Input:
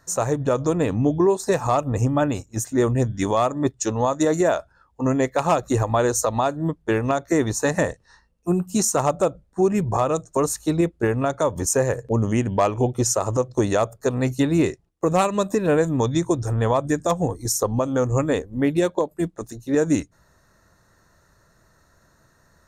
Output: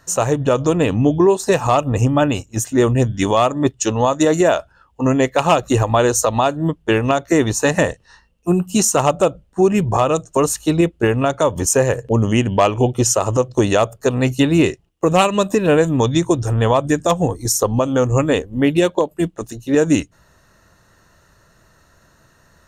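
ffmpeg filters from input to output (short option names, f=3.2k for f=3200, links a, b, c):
-af "equalizer=f=2.9k:w=3.9:g=11.5,volume=5dB"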